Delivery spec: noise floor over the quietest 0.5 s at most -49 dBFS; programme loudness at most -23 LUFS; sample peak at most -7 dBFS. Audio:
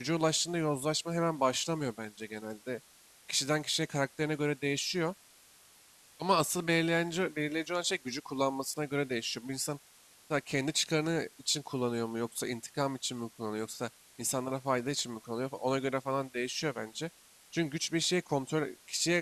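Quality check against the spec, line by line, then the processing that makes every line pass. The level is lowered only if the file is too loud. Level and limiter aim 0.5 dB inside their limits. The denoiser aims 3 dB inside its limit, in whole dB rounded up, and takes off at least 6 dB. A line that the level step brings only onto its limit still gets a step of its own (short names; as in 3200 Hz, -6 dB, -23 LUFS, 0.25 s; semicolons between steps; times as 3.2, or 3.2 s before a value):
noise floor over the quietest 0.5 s -60 dBFS: OK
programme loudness -33.0 LUFS: OK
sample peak -14.5 dBFS: OK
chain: none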